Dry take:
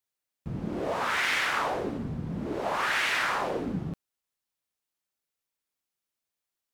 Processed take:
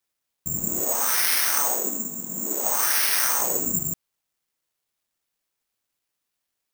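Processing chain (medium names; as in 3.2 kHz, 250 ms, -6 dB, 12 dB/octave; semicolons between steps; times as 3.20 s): 0.84–3.39 s: elliptic band-pass 210–4200 Hz, stop band 40 dB; careless resampling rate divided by 6×, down none, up zero stuff; trim -1.5 dB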